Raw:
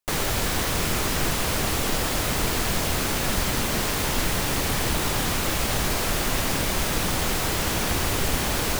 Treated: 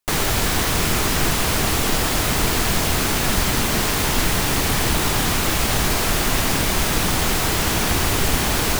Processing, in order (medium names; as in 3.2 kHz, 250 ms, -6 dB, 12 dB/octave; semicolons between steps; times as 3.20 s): peaking EQ 540 Hz -4.5 dB 0.24 oct; trim +5 dB